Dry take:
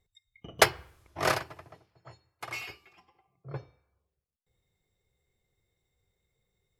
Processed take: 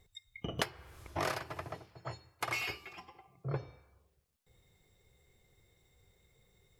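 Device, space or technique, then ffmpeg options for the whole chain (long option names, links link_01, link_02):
serial compression, peaks first: -af "acompressor=threshold=-37dB:ratio=6,acompressor=threshold=-50dB:ratio=1.5,volume=10dB"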